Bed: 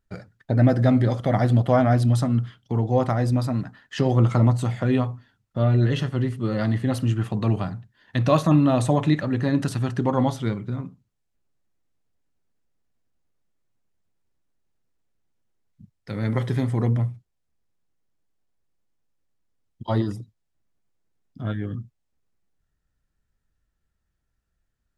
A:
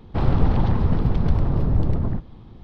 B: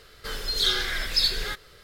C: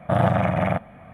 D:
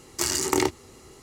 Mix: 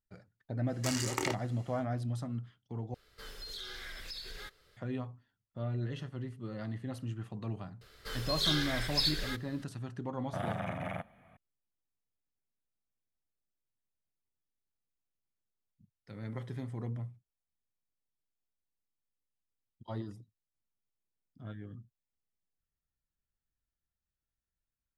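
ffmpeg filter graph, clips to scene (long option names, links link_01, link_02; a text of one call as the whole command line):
ffmpeg -i bed.wav -i cue0.wav -i cue1.wav -i cue2.wav -i cue3.wav -filter_complex "[2:a]asplit=2[link_01][link_02];[0:a]volume=-16.5dB[link_03];[4:a]equalizer=frequency=2200:width_type=o:width=2.6:gain=9[link_04];[link_01]acompressor=threshold=-25dB:ratio=6:attack=3.2:release=140:knee=1:detection=peak[link_05];[3:a]highshelf=frequency=2100:gain=10[link_06];[link_03]asplit=2[link_07][link_08];[link_07]atrim=end=2.944[link_09];[link_05]atrim=end=1.83,asetpts=PTS-STARTPTS,volume=-14.5dB[link_10];[link_08]atrim=start=4.766[link_11];[link_04]atrim=end=1.22,asetpts=PTS-STARTPTS,volume=-15dB,afade=type=in:duration=0.1,afade=type=out:start_time=1.12:duration=0.1,adelay=650[link_12];[link_02]atrim=end=1.83,asetpts=PTS-STARTPTS,volume=-7.5dB,afade=type=in:duration=0.004:curve=hsin,afade=type=out:start_time=1.826:duration=0.004:curve=hsin,adelay=7810[link_13];[link_06]atrim=end=1.13,asetpts=PTS-STARTPTS,volume=-17.5dB,afade=type=in:duration=0.004:curve=hsin,afade=type=out:start_time=1.126:duration=0.004:curve=hsin,adelay=10240[link_14];[link_09][link_10]acrossfade=duration=0.004:curve1=hsin:curve2=hsin[link_15];[link_15][link_11]acrossfade=duration=0.004:curve1=hsin:curve2=hsin[link_16];[link_16][link_12][link_13][link_14]amix=inputs=4:normalize=0" out.wav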